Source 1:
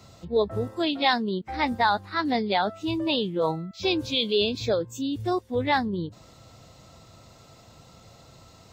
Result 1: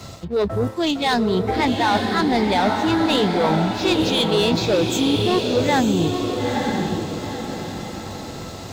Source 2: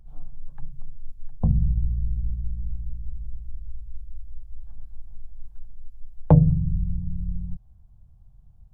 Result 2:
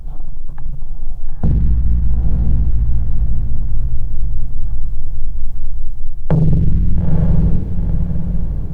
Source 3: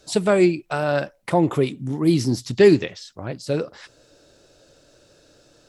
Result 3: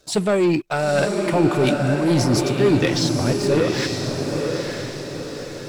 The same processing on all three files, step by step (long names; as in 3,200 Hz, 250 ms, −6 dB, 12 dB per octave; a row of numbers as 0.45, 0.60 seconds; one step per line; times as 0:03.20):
reversed playback
downward compressor 4 to 1, threshold −31 dBFS
reversed playback
leveller curve on the samples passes 2
feedback delay with all-pass diffusion 914 ms, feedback 44%, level −3 dB
loudness normalisation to −20 LKFS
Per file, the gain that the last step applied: +7.0, +13.5, +7.0 decibels